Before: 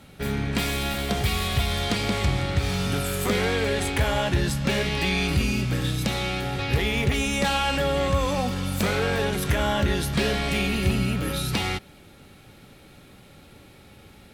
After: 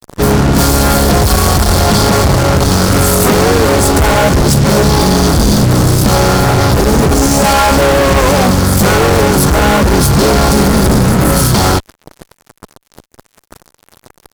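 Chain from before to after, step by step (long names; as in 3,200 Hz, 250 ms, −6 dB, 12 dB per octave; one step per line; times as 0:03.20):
brick-wall band-stop 1,500–4,200 Hz
fuzz pedal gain 39 dB, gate −42 dBFS
pitch-shifted copies added −5 semitones −7 dB, +4 semitones −15 dB
level +5 dB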